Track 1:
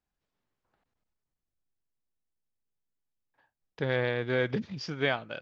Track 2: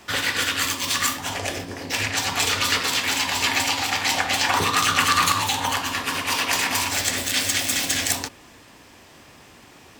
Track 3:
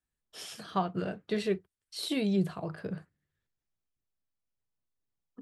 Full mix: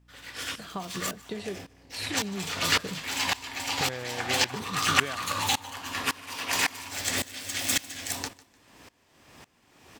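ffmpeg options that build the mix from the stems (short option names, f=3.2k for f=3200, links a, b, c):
-filter_complex "[0:a]aeval=exprs='val(0)+0.000794*(sin(2*PI*60*n/s)+sin(2*PI*2*60*n/s)/2+sin(2*PI*3*60*n/s)/3+sin(2*PI*4*60*n/s)/4+sin(2*PI*5*60*n/s)/5)':c=same,volume=2.5dB[a];[1:a]aeval=exprs='val(0)*pow(10,-24*if(lt(mod(-1.8*n/s,1),2*abs(-1.8)/1000),1-mod(-1.8*n/s,1)/(2*abs(-1.8)/1000),(mod(-1.8*n/s,1)-2*abs(-1.8)/1000)/(1-2*abs(-1.8)/1000))/20)':c=same,afade=t=in:st=1.83:d=0.59:silence=0.398107,asplit=2[b][c];[c]volume=-21.5dB[d];[2:a]volume=2dB[e];[a][e]amix=inputs=2:normalize=0,acompressor=threshold=-33dB:ratio=6,volume=0dB[f];[d]aecho=0:1:150|300|450|600:1|0.29|0.0841|0.0244[g];[b][f][g]amix=inputs=3:normalize=0"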